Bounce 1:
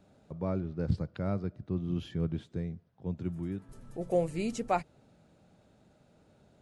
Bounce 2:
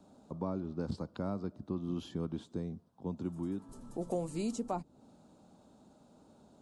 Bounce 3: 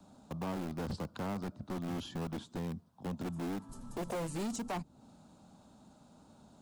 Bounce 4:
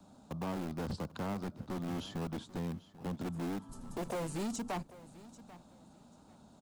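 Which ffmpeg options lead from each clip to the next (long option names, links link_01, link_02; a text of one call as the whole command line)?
ffmpeg -i in.wav -filter_complex "[0:a]equalizer=frequency=125:width_type=o:width=1:gain=-4,equalizer=frequency=250:width_type=o:width=1:gain=10,equalizer=frequency=1000:width_type=o:width=1:gain=11,equalizer=frequency=2000:width_type=o:width=1:gain=-10,equalizer=frequency=4000:width_type=o:width=1:gain=4,equalizer=frequency=8000:width_type=o:width=1:gain=8,acrossover=split=350|890[link_01][link_02][link_03];[link_01]acompressor=threshold=-33dB:ratio=4[link_04];[link_02]acompressor=threshold=-38dB:ratio=4[link_05];[link_03]acompressor=threshold=-43dB:ratio=4[link_06];[link_04][link_05][link_06]amix=inputs=3:normalize=0,volume=-3dB" out.wav
ffmpeg -i in.wav -filter_complex "[0:a]acrossover=split=310|570|4300[link_01][link_02][link_03][link_04];[link_02]acrusher=bits=7:mix=0:aa=0.000001[link_05];[link_01][link_05][link_03][link_04]amix=inputs=4:normalize=0,asoftclip=type=hard:threshold=-38dB,volume=4dB" out.wav
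ffmpeg -i in.wav -af "aecho=1:1:791|1582:0.126|0.0277" out.wav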